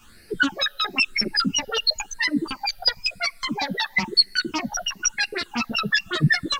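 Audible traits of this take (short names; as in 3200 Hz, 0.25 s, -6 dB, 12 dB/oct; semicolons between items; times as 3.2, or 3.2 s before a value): phasing stages 8, 0.99 Hz, lowest notch 300–1000 Hz; a quantiser's noise floor 12-bit, dither none; a shimmering, thickened sound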